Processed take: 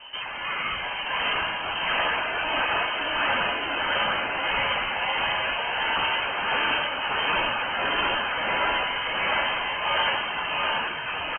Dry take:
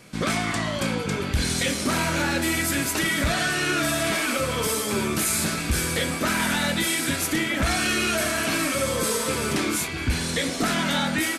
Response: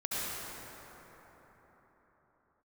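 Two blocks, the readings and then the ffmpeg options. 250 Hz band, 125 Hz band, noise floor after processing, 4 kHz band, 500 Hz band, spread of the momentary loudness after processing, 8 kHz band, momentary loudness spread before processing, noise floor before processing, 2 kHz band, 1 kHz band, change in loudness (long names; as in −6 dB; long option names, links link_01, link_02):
−15.0 dB, −16.0 dB, −32 dBFS, +1.0 dB, −4.0 dB, 4 LU, below −40 dB, 3 LU, −30 dBFS, +1.0 dB, +4.0 dB, −1.0 dB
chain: -filter_complex "[0:a]afftfilt=real='re*lt(hypot(re,im),0.178)':imag='im*lt(hypot(re,im),0.178)':win_size=1024:overlap=0.75,bandreject=frequency=1300:width=10,acontrast=61,alimiter=limit=-17.5dB:level=0:latency=1:release=18,dynaudnorm=framelen=220:gausssize=11:maxgain=9dB,aresample=11025,asoftclip=type=tanh:threshold=-18.5dB,aresample=44100,tremolo=f=1.5:d=0.43,aphaser=in_gain=1:out_gain=1:delay=3:decay=0.26:speed=0.99:type=triangular,asplit=2[link_01][link_02];[link_02]aecho=0:1:44|695:0.126|0.668[link_03];[link_01][link_03]amix=inputs=2:normalize=0,lowpass=frequency=2700:width_type=q:width=0.5098,lowpass=frequency=2700:width_type=q:width=0.6013,lowpass=frequency=2700:width_type=q:width=0.9,lowpass=frequency=2700:width_type=q:width=2.563,afreqshift=-3200,adynamicequalizer=threshold=0.0178:dfrequency=2100:dqfactor=0.7:tfrequency=2100:tqfactor=0.7:attack=5:release=100:ratio=0.375:range=2:mode=cutabove:tftype=highshelf"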